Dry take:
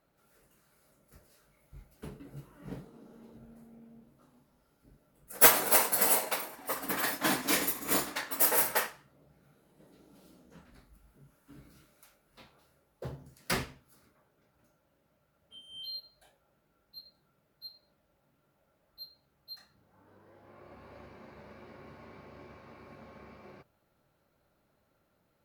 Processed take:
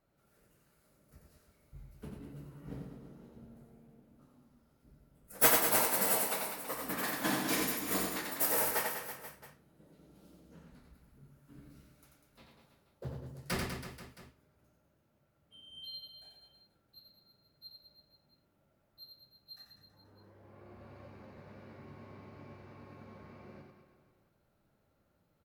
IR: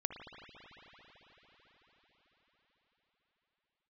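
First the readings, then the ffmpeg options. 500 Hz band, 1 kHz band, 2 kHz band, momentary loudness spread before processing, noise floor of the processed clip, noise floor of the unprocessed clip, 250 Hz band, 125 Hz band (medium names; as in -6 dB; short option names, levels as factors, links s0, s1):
-2.5 dB, -3.0 dB, -4.0 dB, 25 LU, -74 dBFS, -74 dBFS, -0.5 dB, +1.5 dB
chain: -filter_complex "[0:a]flanger=delay=8.7:depth=4.5:regen=-59:speed=0.53:shape=sinusoidal,lowshelf=f=280:g=7,asplit=2[s0][s1];[s1]aecho=0:1:90|198|327.6|483.1|669.7:0.631|0.398|0.251|0.158|0.1[s2];[s0][s2]amix=inputs=2:normalize=0,volume=0.794"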